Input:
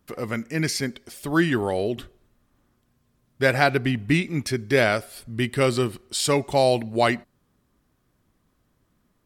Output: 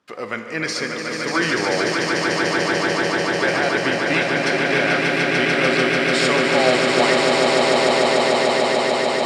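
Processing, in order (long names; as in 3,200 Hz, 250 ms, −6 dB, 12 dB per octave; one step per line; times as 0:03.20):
meter weighting curve A
brickwall limiter −14 dBFS, peak gain reduction 11 dB
high-frequency loss of the air 77 metres
echo that builds up and dies away 147 ms, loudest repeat 8, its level −4 dB
on a send at −7.5 dB: convolution reverb RT60 1.8 s, pre-delay 6 ms
on the sum: level +4.5 dB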